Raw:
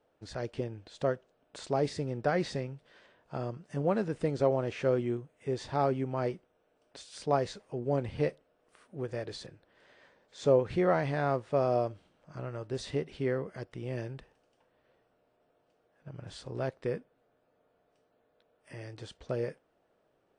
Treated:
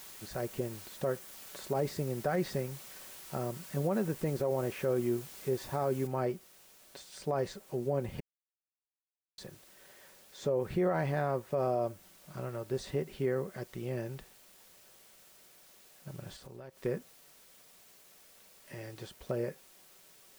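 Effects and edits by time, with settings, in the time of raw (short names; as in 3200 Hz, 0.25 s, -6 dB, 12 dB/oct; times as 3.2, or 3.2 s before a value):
6.07 noise floor step -50 dB -60 dB
8.2–9.38 mute
16.36–16.78 compressor 4:1, threshold -47 dBFS
whole clip: comb 5.3 ms, depth 34%; dynamic EQ 3700 Hz, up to -5 dB, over -52 dBFS, Q 0.78; limiter -21.5 dBFS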